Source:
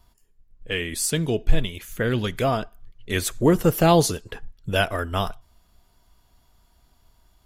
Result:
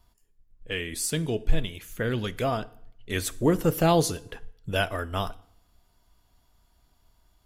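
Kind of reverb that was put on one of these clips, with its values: FDN reverb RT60 0.68 s, low-frequency decay 1.1×, high-frequency decay 0.85×, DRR 16.5 dB; gain -4.5 dB

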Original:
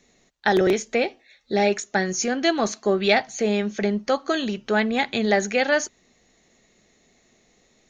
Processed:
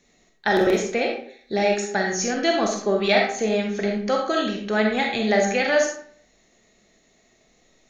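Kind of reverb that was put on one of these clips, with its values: digital reverb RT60 0.56 s, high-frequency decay 0.7×, pre-delay 5 ms, DRR 0.5 dB; gain -2 dB

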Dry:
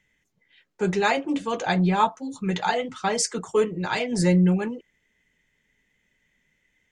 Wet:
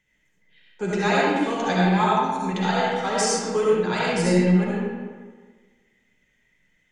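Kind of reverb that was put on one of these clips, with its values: digital reverb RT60 1.5 s, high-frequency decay 0.65×, pre-delay 30 ms, DRR -5.5 dB; gain -3.5 dB

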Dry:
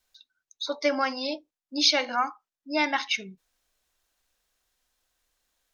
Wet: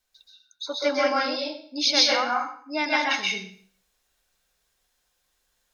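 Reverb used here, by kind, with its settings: plate-style reverb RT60 0.52 s, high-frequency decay 0.95×, pre-delay 0.115 s, DRR -4 dB; gain -2 dB

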